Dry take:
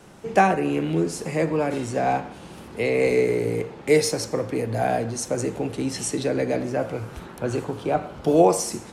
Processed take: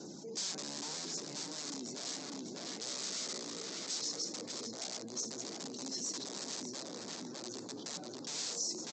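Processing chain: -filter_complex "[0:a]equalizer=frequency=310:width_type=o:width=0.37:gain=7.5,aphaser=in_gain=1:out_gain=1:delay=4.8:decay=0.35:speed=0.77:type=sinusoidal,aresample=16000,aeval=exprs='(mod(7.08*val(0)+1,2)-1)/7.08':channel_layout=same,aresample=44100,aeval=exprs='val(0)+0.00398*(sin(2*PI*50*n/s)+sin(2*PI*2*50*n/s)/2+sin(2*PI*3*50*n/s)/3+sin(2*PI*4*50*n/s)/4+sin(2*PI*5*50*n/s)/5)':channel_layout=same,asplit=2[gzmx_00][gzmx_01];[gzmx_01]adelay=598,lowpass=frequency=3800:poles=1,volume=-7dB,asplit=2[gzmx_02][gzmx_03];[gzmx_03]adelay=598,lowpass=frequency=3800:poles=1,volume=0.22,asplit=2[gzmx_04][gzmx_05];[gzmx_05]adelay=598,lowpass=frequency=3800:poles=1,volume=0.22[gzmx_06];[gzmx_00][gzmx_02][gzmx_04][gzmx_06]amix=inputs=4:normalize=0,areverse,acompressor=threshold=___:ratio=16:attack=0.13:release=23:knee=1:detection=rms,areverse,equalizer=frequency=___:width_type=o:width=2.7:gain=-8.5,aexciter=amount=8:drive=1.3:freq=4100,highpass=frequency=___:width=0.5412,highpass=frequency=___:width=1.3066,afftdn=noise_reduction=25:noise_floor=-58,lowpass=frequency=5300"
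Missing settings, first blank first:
-37dB, 1300, 180, 180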